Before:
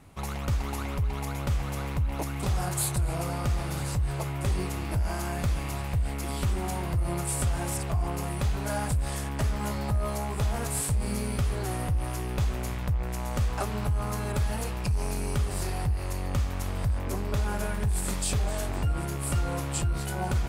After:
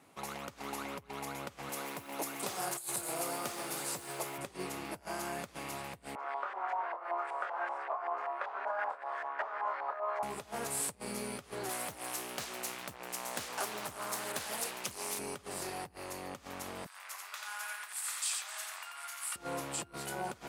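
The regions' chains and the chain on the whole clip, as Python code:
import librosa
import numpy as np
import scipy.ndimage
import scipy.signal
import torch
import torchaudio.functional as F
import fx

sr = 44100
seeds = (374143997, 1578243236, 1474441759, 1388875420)

y = fx.chain(x, sr, fx.highpass(hz=190.0, slope=12),
    fx.high_shelf(hz=6400.0, db=8.5),
    fx.echo_crushed(ms=127, feedback_pct=80, bits=7, wet_db=-13.5), at=(1.69, 4.38))
y = fx.chain(y, sr, fx.highpass(hz=550.0, slope=24),
    fx.doubler(ms=26.0, db=-7.0),
    fx.filter_lfo_lowpass(shape='saw_up', hz=5.2, low_hz=880.0, high_hz=1800.0, q=2.9), at=(6.15, 10.23))
y = fx.chain(y, sr, fx.highpass(hz=44.0, slope=6),
    fx.tilt_eq(slope=2.5),
    fx.doppler_dist(depth_ms=0.65), at=(11.69, 15.19))
y = fx.chain(y, sr, fx.highpass(hz=1100.0, slope=24),
    fx.echo_single(ms=88, db=-3.5), at=(16.86, 19.36))
y = fx.over_compress(y, sr, threshold_db=-29.0, ratio=-0.5)
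y = scipy.signal.sosfilt(scipy.signal.butter(2, 280.0, 'highpass', fs=sr, output='sos'), y)
y = F.gain(torch.from_numpy(y), -5.0).numpy()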